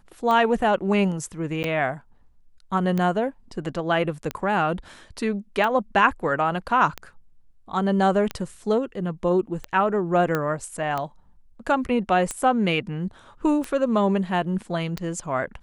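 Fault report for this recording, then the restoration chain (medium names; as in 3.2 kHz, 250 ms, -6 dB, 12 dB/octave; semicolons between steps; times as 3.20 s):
tick 45 rpm -14 dBFS
1.63–1.64 s: dropout 9.9 ms
10.35 s: pop -11 dBFS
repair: de-click; interpolate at 1.63 s, 9.9 ms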